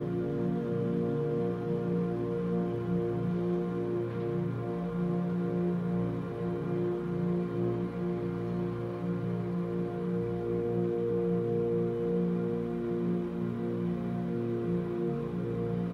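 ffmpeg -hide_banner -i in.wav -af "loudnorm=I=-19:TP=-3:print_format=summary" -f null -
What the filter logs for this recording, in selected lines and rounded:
Input Integrated:    -32.3 LUFS
Input True Peak:     -19.9 dBTP
Input LRA:             1.5 LU
Input Threshold:     -42.3 LUFS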